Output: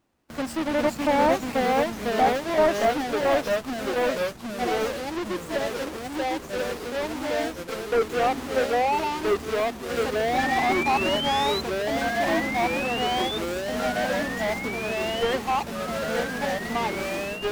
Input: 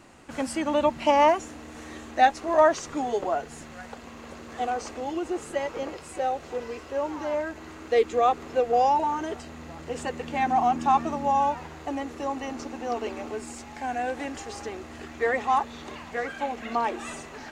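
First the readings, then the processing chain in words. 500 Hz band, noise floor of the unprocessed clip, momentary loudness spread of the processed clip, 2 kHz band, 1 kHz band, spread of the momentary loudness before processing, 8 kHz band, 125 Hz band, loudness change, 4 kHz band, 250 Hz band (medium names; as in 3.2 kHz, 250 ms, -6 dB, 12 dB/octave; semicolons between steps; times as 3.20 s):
+3.0 dB, -44 dBFS, 8 LU, +6.5 dB, -1.0 dB, 18 LU, +4.0 dB, +6.5 dB, +1.5 dB, +10.0 dB, +4.0 dB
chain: square wave that keeps the level; gate with hold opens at -30 dBFS; painted sound rise, 10.38–11.61 s, 1.7–4.1 kHz -25 dBFS; ever faster or slower copies 355 ms, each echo -2 st, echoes 3; slew-rate limiter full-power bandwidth 230 Hz; trim -4 dB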